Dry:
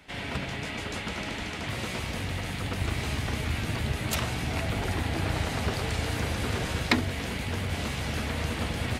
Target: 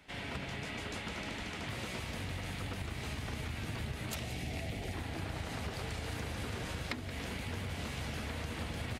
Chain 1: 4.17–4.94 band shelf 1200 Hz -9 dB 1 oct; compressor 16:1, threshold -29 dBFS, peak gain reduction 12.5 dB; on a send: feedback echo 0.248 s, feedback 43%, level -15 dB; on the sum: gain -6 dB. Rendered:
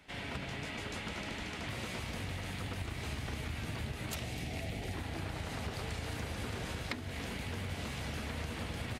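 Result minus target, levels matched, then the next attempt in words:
echo 73 ms late
4.17–4.94 band shelf 1200 Hz -9 dB 1 oct; compressor 16:1, threshold -29 dBFS, peak gain reduction 12.5 dB; on a send: feedback echo 0.175 s, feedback 43%, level -15 dB; on the sum: gain -6 dB

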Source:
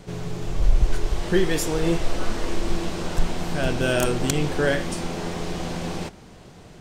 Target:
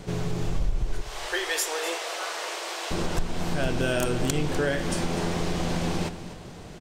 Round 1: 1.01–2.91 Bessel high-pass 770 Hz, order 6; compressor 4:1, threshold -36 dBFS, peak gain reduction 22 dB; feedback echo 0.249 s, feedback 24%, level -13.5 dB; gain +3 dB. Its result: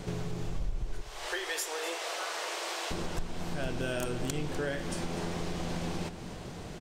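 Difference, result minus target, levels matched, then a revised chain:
compressor: peak gain reduction +8 dB
1.01–2.91 Bessel high-pass 770 Hz, order 6; compressor 4:1, threshold -25.5 dBFS, peak gain reduction 14 dB; feedback echo 0.249 s, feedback 24%, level -13.5 dB; gain +3 dB

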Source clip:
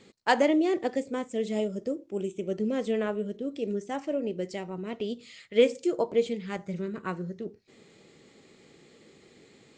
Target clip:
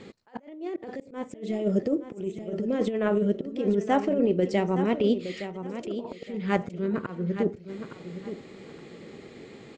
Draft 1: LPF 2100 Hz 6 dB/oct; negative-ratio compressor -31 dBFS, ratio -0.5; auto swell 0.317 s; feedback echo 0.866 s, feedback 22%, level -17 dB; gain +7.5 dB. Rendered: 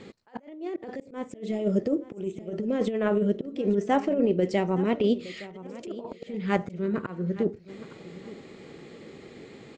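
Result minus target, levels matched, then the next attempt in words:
echo-to-direct -6.5 dB
LPF 2100 Hz 6 dB/oct; negative-ratio compressor -31 dBFS, ratio -0.5; auto swell 0.317 s; feedback echo 0.866 s, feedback 22%, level -10.5 dB; gain +7.5 dB

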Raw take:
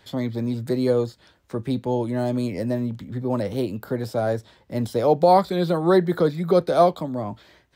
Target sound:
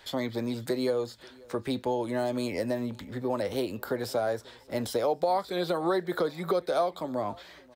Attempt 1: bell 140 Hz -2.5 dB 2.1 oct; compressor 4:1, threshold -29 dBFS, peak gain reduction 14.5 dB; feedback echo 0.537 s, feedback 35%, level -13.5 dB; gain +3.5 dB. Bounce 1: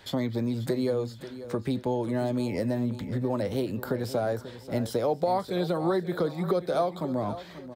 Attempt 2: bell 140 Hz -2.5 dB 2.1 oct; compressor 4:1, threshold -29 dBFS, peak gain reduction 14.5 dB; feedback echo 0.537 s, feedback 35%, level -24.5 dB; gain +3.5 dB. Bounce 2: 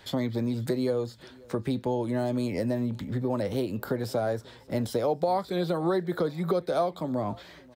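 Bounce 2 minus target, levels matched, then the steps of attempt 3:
125 Hz band +6.5 dB
bell 140 Hz -14 dB 2.1 oct; compressor 4:1, threshold -29 dBFS, peak gain reduction 13 dB; feedback echo 0.537 s, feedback 35%, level -24.5 dB; gain +3.5 dB

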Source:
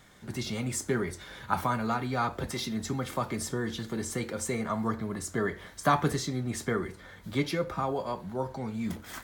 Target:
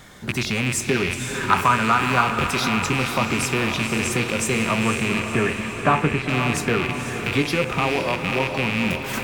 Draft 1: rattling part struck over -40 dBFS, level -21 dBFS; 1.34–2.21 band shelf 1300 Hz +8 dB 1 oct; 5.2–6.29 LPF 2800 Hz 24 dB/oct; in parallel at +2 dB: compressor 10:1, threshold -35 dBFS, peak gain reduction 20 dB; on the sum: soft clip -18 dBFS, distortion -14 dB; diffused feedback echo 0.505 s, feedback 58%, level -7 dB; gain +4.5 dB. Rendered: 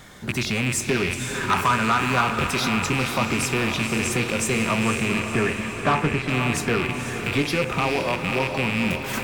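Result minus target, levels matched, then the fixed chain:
soft clip: distortion +10 dB
rattling part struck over -40 dBFS, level -21 dBFS; 1.34–2.21 band shelf 1300 Hz +8 dB 1 oct; 5.2–6.29 LPF 2800 Hz 24 dB/oct; in parallel at +2 dB: compressor 10:1, threshold -35 dBFS, peak gain reduction 20 dB; on the sum: soft clip -8.5 dBFS, distortion -24 dB; diffused feedback echo 0.505 s, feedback 58%, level -7 dB; gain +4.5 dB

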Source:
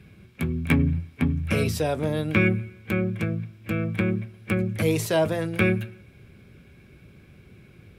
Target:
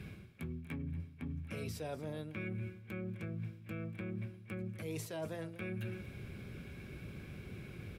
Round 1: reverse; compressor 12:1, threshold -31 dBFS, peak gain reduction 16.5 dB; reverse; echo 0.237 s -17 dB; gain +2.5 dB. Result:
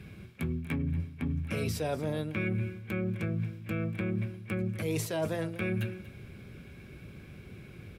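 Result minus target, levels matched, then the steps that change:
compressor: peak gain reduction -9.5 dB
change: compressor 12:1, threshold -41.5 dBFS, peak gain reduction 26 dB

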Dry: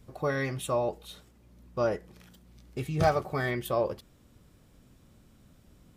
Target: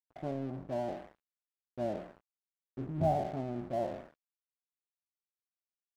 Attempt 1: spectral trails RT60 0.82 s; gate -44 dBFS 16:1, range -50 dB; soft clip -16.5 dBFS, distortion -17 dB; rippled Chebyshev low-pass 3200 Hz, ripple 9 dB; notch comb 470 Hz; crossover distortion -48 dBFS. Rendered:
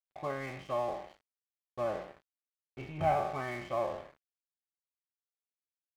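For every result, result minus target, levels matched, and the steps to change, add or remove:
soft clip: distortion +9 dB; 4000 Hz band +5.0 dB
change: soft clip -10.5 dBFS, distortion -26 dB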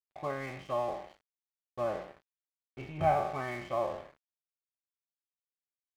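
4000 Hz band +4.0 dB
change: rippled Chebyshev low-pass 980 Hz, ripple 9 dB

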